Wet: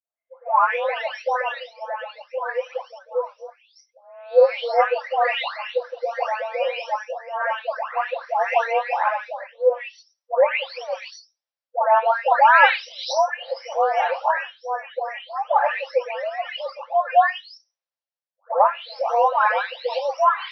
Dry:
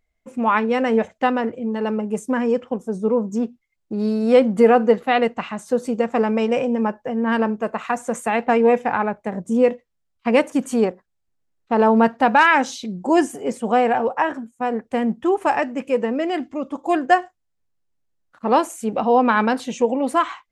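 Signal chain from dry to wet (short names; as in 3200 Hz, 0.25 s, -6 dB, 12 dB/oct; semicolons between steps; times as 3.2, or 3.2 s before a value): spectral delay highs late, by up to 0.632 s; brick-wall FIR band-pass 490–5900 Hz; in parallel at +1 dB: compressor, threshold -32 dBFS, peak gain reduction 18.5 dB; on the sum: three-band expander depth 40%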